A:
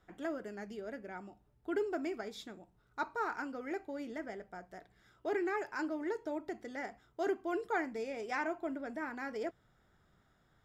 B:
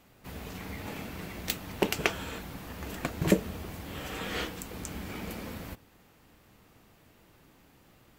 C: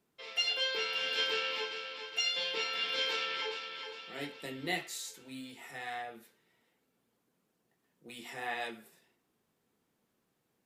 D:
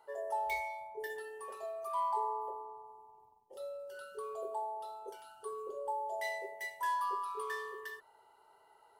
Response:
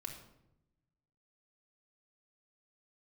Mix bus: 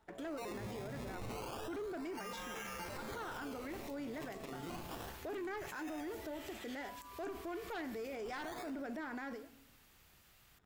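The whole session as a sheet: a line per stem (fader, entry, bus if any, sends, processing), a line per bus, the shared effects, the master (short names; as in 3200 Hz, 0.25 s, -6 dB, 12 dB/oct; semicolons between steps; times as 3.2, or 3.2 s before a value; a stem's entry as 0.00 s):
-2.0 dB, 0.00 s, send -10 dB, one-sided fold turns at -29 dBFS; sample leveller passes 2; ending taper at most 180 dB/s
+1.0 dB, 2.40 s, no send, passive tone stack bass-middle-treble 10-0-10; compressor, threshold -51 dBFS, peak gain reduction 23 dB
-4.5 dB, 0.00 s, send -5 dB, decimation with a swept rate 20×, swing 100% 0.3 Hz
-11.5 dB, 0.00 s, no send, limiter -36 dBFS, peak gain reduction 11.5 dB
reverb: on, RT60 0.85 s, pre-delay 3 ms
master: limiter -37 dBFS, peak gain reduction 16 dB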